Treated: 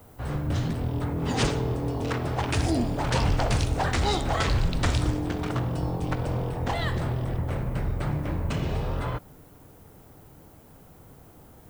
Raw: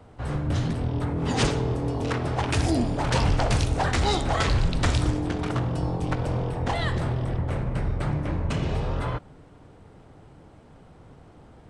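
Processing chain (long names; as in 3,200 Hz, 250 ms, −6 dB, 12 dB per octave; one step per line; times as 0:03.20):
background noise violet −58 dBFS
level −1.5 dB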